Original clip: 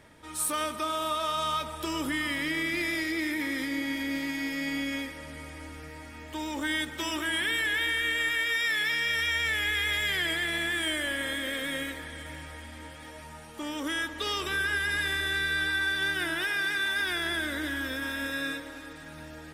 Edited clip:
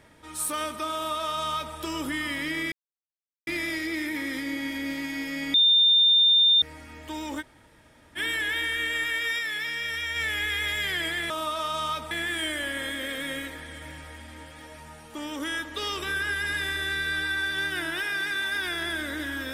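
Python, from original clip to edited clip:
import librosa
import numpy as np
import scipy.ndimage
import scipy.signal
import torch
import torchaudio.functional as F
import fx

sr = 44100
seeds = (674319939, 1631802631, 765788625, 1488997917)

y = fx.edit(x, sr, fx.duplicate(start_s=0.94, length_s=0.81, to_s=10.55),
    fx.insert_silence(at_s=2.72, length_s=0.75),
    fx.bleep(start_s=4.79, length_s=1.08, hz=3610.0, db=-15.5),
    fx.room_tone_fill(start_s=6.66, length_s=0.76, crossfade_s=0.04),
    fx.clip_gain(start_s=8.64, length_s=0.77, db=-3.0), tone=tone)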